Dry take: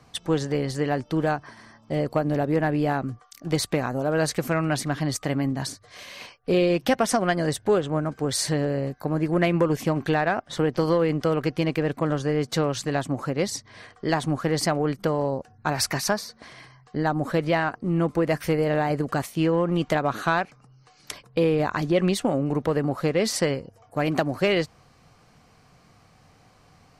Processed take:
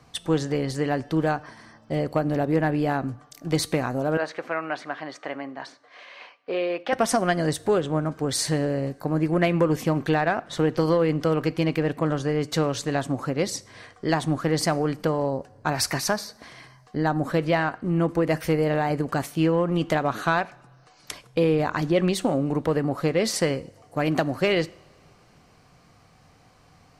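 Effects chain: 4.17–6.93 BPF 540–2500 Hz; two-slope reverb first 0.56 s, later 3.2 s, from -21 dB, DRR 17 dB

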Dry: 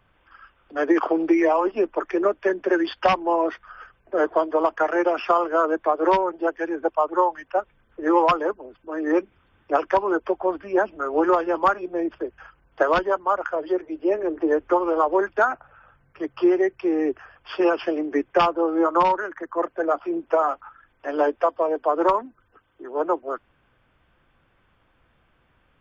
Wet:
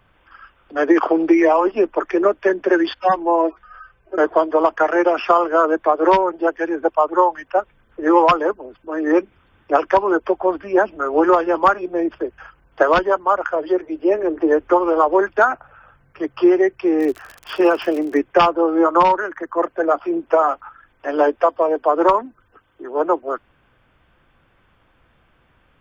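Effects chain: 2.94–4.18 median-filter separation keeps harmonic; 16.98–18.2 crackle 93/s -32 dBFS; gain +5 dB

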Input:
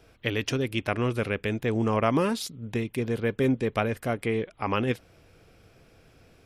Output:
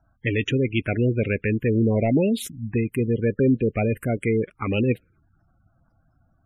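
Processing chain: sample leveller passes 2; envelope phaser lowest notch 430 Hz, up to 1200 Hz, full sweep at -16 dBFS; spectral gate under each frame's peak -20 dB strong

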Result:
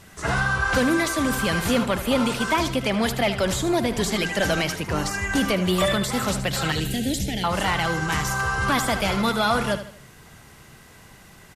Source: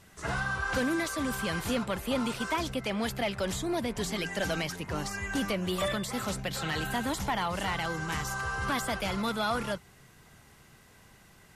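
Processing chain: 6.72–7.44 Butterworth band-stop 1100 Hz, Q 0.54; on a send: feedback echo 77 ms, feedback 40%, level -11.5 dB; on the sum: gain +8.5 dB

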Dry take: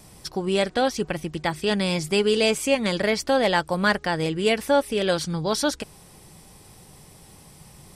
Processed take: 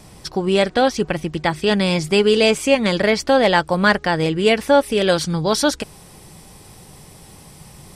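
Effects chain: high shelf 8700 Hz -9.5 dB, from 4.83 s -2 dB; gain +6 dB

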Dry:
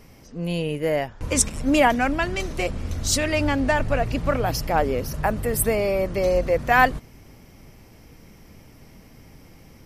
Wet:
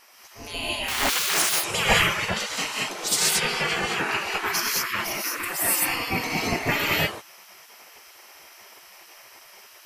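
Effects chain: 0.88–1.4 infinite clipping; non-linear reverb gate 0.24 s rising, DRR -5.5 dB; spectral gate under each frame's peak -20 dB weak; gain +3.5 dB

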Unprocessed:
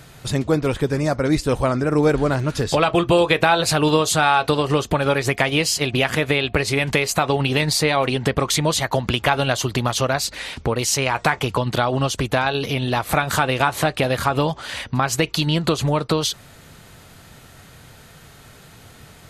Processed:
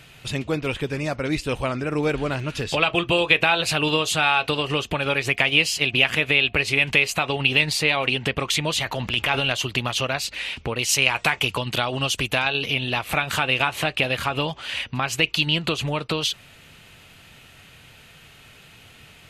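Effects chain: bell 2700 Hz +13.5 dB 0.76 oct; 8.8–9.52 transient shaper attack -8 dB, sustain +7 dB; 10.89–12.48 high shelf 6000 Hz +9.5 dB; gain -6.5 dB

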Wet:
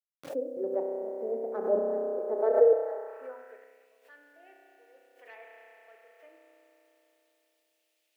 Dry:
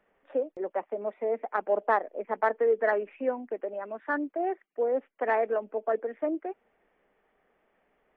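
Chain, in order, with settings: tremolo saw up 1.1 Hz, depth 100%; ten-band EQ 125 Hz -4 dB, 250 Hz +10 dB, 500 Hz +10 dB, 1000 Hz -4 dB, 2000 Hz -7 dB; spring tank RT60 3.8 s, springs 31 ms, chirp 70 ms, DRR -0.5 dB; bit-crush 11-bit; high-pass sweep 130 Hz -> 2600 Hz, 1.52–3.9; dynamic EQ 2700 Hz, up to -5 dB, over -43 dBFS, Q 0.98; backwards sustainer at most 130 dB/s; gain -8.5 dB

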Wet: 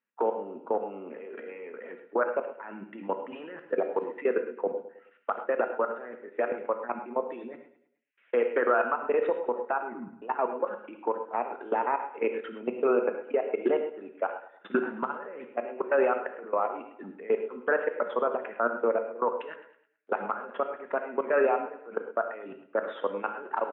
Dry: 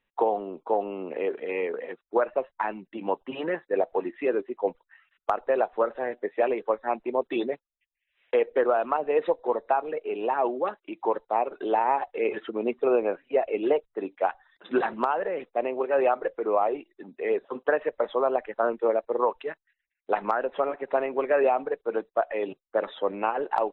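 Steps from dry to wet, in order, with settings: 3.59–4.08 level-crossing sampler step -46 dBFS; 8.45–8.86 bell 1800 Hz +5.5 dB 2.1 oct; 9.82 tape stop 0.40 s; level quantiser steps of 24 dB; limiter -22.5 dBFS, peak gain reduction 10.5 dB; speaker cabinet 190–2700 Hz, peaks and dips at 230 Hz +7 dB, 740 Hz -4 dB, 1400 Hz +8 dB; feedback echo 0.106 s, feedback 42%, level -14.5 dB; non-linear reverb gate 0.15 s flat, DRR 6.5 dB; gain +5.5 dB

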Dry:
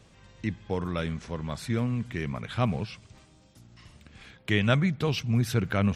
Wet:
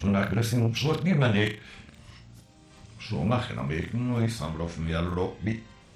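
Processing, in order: whole clip reversed; flutter echo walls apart 6.1 m, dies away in 0.32 s; core saturation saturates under 450 Hz; gain +2 dB

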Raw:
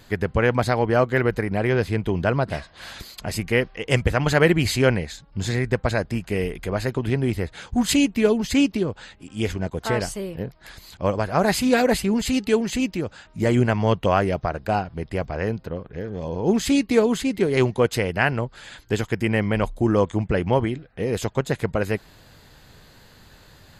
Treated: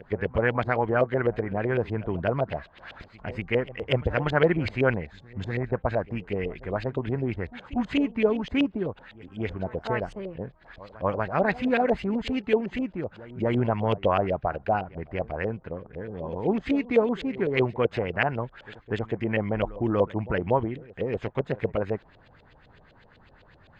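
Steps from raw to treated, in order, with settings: LFO low-pass saw up 7.9 Hz 500–3300 Hz; reverse echo 0.24 s -19 dB; gain -6.5 dB

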